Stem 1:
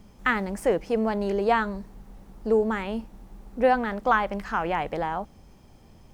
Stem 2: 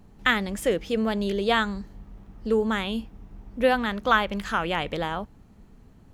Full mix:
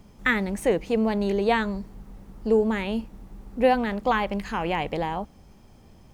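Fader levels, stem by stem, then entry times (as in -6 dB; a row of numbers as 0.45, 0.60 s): 0.0, -7.0 dB; 0.00, 0.00 s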